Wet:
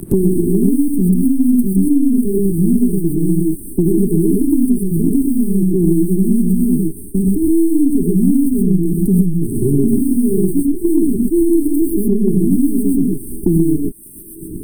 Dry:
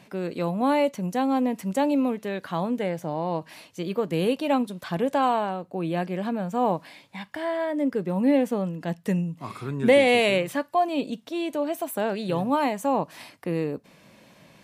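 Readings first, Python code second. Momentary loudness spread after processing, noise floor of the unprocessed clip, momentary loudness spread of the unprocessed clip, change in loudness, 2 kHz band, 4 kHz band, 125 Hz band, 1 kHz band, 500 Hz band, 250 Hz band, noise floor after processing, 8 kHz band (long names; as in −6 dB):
4 LU, −55 dBFS, 10 LU, +10.5 dB, below −35 dB, below −35 dB, +15.5 dB, below −25 dB, +4.0 dB, +14.5 dB, −31 dBFS, +15.0 dB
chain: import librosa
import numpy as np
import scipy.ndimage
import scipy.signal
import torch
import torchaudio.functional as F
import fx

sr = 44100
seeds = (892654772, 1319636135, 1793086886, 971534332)

p1 = np.where(x < 0.0, 10.0 ** (-12.0 / 20.0) * x, x)
p2 = fx.leveller(p1, sr, passes=5)
p3 = np.where(np.abs(p2) >= 10.0 ** (-24.0 / 20.0), p2, 0.0)
p4 = p2 + (p3 * 10.0 ** (-8.0 / 20.0))
p5 = fx.spec_paint(p4, sr, seeds[0], shape='rise', start_s=0.46, length_s=1.73, low_hz=350.0, high_hz=3900.0, level_db=-21.0)
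p6 = fx.brickwall_bandstop(p5, sr, low_hz=420.0, high_hz=8100.0)
p7 = fx.echo_wet_highpass(p6, sr, ms=761, feedback_pct=62, hz=1400.0, wet_db=-19.5)
p8 = fx.rev_gated(p7, sr, seeds[1], gate_ms=150, shape='rising', drr_db=-4.0)
p9 = fx.band_squash(p8, sr, depth_pct=100)
y = p9 * 10.0 ** (-3.5 / 20.0)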